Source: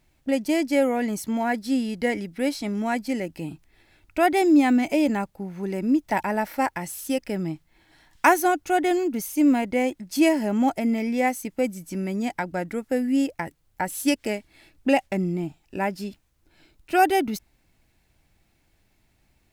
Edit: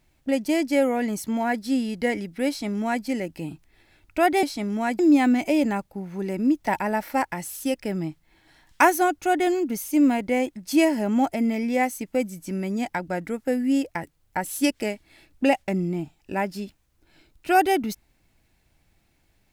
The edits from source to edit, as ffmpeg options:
-filter_complex "[0:a]asplit=3[a][b][c];[a]atrim=end=4.432[d];[b]atrim=start=2.478:end=3.042[e];[c]atrim=start=4.428[f];[d][e]acrossfade=d=0.004:c1=hsin:c2=hsin[g];[g][f]acrossfade=d=0.004:c1=hsin:c2=hsin"

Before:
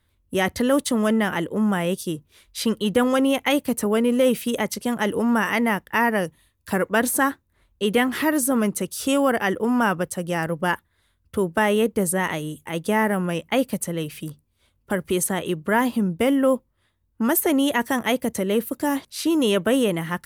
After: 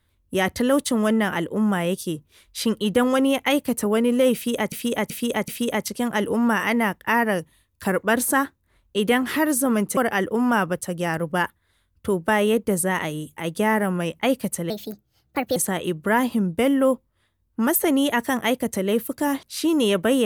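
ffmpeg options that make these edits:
-filter_complex "[0:a]asplit=7[a][b][c][d][e][f][g];[a]atrim=end=4.722[h];[b]atrim=start=4.338:end=4.722[i];[c]atrim=start=4.338:end=4.722[j];[d]atrim=start=4.338:end=8.832[k];[e]atrim=start=9.258:end=13.994[l];[f]atrim=start=13.99:end=15.18,asetpts=PTS-STARTPTS,asetrate=60858,aresample=44100,atrim=end_sample=38028,asetpts=PTS-STARTPTS[m];[g]atrim=start=15.176[n];[h][i]acrossfade=d=0.004:c1=hsin:c2=hsin[o];[o][j]acrossfade=d=0.004:c1=hsin:c2=hsin[p];[p][k]acrossfade=d=0.004:c1=hsin:c2=hsin[q];[q][l]acrossfade=d=0.004:c1=hsin:c2=hsin[r];[r][m]acrossfade=d=0.004:c1=hsin:c2=hsin[s];[s][n]acrossfade=d=0.004:c1=hsin:c2=hsin"

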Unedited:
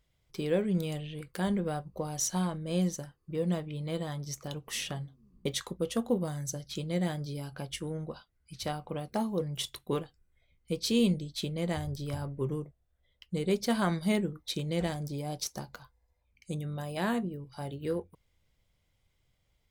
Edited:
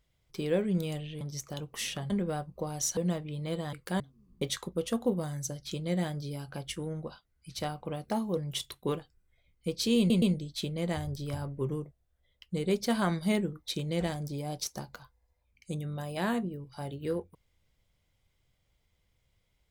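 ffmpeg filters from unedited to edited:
-filter_complex "[0:a]asplit=8[a][b][c][d][e][f][g][h];[a]atrim=end=1.212[i];[b]atrim=start=4.148:end=5.042[j];[c]atrim=start=1.478:end=2.352[k];[d]atrim=start=3.388:end=4.152[l];[e]atrim=start=1.208:end=1.482[m];[f]atrim=start=5.038:end=11.142[n];[g]atrim=start=11.018:end=11.142[o];[h]atrim=start=11.018[p];[i][j]acrossfade=d=0.004:c1=hsin:c2=hsin[q];[q][k]acrossfade=d=0.004:c1=hsin:c2=hsin[r];[r][l]acrossfade=d=0.004:c1=hsin:c2=hsin[s];[s][m]acrossfade=d=0.004:c1=hsin:c2=hsin[t];[t][n]acrossfade=d=0.004:c1=hsin:c2=hsin[u];[u][o]acrossfade=d=0.004:c1=hsin:c2=hsin[v];[v][p]acrossfade=d=0.004:c1=hsin:c2=hsin"

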